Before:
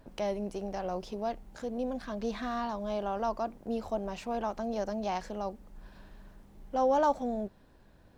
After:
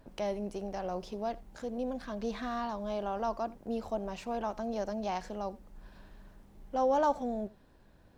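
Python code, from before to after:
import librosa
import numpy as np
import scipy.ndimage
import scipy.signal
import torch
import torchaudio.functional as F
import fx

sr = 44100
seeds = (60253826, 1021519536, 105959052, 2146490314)

y = x + 10.0 ** (-22.0 / 20.0) * np.pad(x, (int(83 * sr / 1000.0), 0))[:len(x)]
y = F.gain(torch.from_numpy(y), -1.5).numpy()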